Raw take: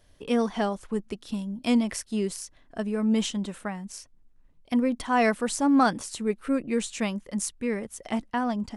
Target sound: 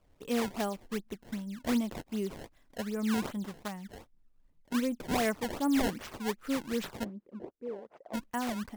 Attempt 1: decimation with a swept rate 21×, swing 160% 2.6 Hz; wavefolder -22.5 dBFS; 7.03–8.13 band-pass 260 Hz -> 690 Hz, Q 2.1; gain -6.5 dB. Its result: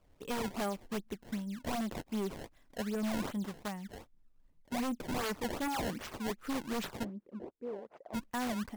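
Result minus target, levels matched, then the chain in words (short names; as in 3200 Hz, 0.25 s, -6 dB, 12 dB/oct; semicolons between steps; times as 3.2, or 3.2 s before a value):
wavefolder: distortion +15 dB
decimation with a swept rate 21×, swing 160% 2.6 Hz; wavefolder -15.5 dBFS; 7.03–8.13 band-pass 260 Hz -> 690 Hz, Q 2.1; gain -6.5 dB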